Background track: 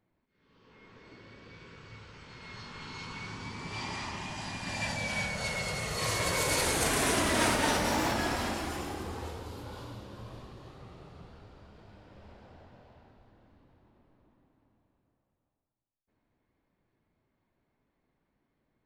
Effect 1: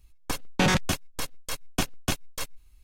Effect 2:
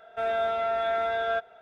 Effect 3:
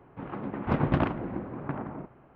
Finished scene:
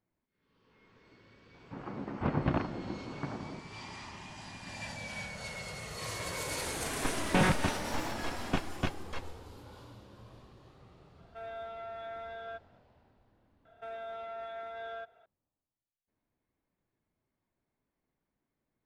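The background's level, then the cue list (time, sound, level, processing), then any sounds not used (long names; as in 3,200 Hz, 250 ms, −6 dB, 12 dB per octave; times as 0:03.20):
background track −8 dB
0:01.54: mix in 3 −5 dB
0:06.75: mix in 1 −3.5 dB + low-pass filter 2,500 Hz
0:11.18: mix in 2 −15.5 dB
0:13.65: mix in 2 −11 dB + brickwall limiter −24.5 dBFS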